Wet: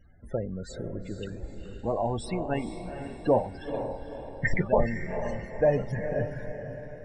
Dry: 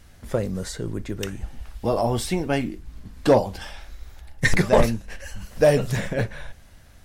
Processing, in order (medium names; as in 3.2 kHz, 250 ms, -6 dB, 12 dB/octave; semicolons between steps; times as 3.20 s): dynamic bell 810 Hz, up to +3 dB, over -30 dBFS, Q 2; loudest bins only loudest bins 32; on a send: echo that smears into a reverb 474 ms, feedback 46%, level -8 dB; on the sum: trim -7 dB